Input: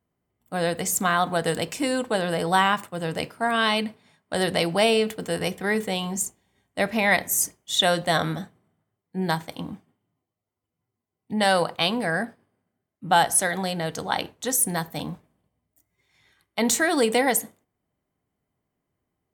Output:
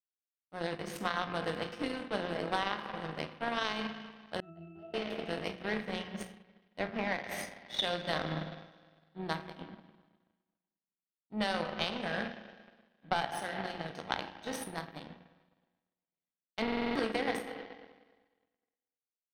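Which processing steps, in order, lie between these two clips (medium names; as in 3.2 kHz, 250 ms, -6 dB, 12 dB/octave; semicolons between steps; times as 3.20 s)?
spectral sustain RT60 0.34 s; spring tank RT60 2.7 s, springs 38/51 ms, chirp 60 ms, DRR 3 dB; power-law waveshaper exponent 2; peaking EQ 210 Hz +4 dB 2 oct; compression 12:1, threshold -27 dBFS, peak gain reduction 12.5 dB; Savitzky-Golay filter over 15 samples; hum notches 60/120/180/240 Hz; 4.40–4.94 s: pitch-class resonator E, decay 0.57 s; 6.79–7.24 s: treble shelf 2.9 kHz -10 dB; buffer glitch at 16.63 s, samples 2048, times 6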